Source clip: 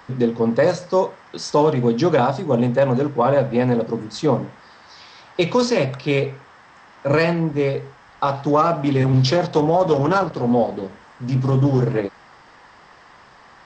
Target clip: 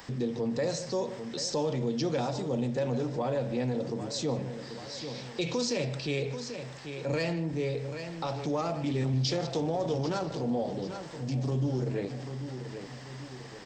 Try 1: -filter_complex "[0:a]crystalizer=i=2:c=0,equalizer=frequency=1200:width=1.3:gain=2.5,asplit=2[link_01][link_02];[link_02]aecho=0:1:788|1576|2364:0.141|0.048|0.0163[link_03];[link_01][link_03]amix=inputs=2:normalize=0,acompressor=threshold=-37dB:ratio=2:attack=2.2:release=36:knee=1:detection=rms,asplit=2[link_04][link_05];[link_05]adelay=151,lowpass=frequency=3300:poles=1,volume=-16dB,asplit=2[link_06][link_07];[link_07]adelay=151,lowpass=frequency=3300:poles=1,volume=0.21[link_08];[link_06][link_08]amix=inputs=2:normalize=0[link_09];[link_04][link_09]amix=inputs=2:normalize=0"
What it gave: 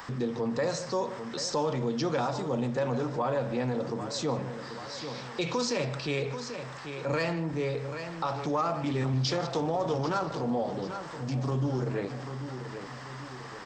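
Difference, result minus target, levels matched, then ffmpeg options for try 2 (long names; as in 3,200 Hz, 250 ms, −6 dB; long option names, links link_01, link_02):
1,000 Hz band +4.5 dB
-filter_complex "[0:a]crystalizer=i=2:c=0,equalizer=frequency=1200:width=1.3:gain=-9,asplit=2[link_01][link_02];[link_02]aecho=0:1:788|1576|2364:0.141|0.048|0.0163[link_03];[link_01][link_03]amix=inputs=2:normalize=0,acompressor=threshold=-37dB:ratio=2:attack=2.2:release=36:knee=1:detection=rms,asplit=2[link_04][link_05];[link_05]adelay=151,lowpass=frequency=3300:poles=1,volume=-16dB,asplit=2[link_06][link_07];[link_07]adelay=151,lowpass=frequency=3300:poles=1,volume=0.21[link_08];[link_06][link_08]amix=inputs=2:normalize=0[link_09];[link_04][link_09]amix=inputs=2:normalize=0"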